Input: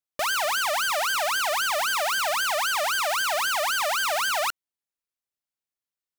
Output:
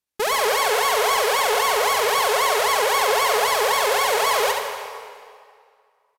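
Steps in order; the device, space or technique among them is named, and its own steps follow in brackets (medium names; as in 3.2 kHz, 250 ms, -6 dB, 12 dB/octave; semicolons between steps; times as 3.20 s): monster voice (pitch shift -6 st; bass shelf 180 Hz +3.5 dB; delay 71 ms -6 dB; reverberation RT60 2.1 s, pre-delay 69 ms, DRR 5 dB); trim +4 dB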